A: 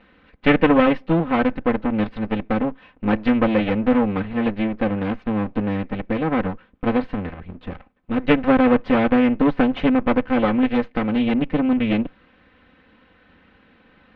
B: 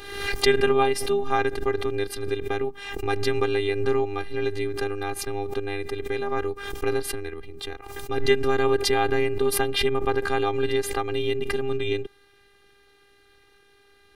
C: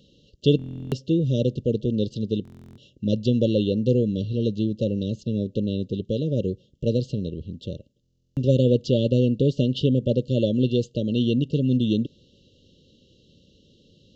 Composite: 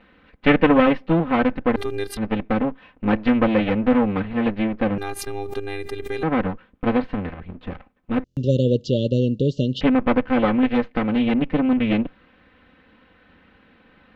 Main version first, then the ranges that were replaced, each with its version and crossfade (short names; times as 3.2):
A
1.76–2.17 from B
4.98–6.23 from B
8.24–9.81 from C